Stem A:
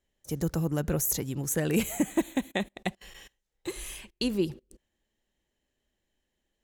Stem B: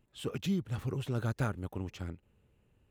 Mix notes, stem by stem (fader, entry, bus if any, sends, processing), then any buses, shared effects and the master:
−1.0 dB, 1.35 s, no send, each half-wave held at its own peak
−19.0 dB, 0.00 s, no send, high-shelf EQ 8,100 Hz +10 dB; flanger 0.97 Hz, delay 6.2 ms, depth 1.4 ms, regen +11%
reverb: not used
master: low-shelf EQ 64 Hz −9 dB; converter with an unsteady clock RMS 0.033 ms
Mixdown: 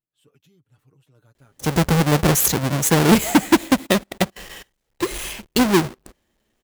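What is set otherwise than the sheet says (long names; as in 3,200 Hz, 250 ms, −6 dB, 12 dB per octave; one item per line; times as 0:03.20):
stem A −1.0 dB → +8.0 dB
master: missing converter with an unsteady clock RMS 0.033 ms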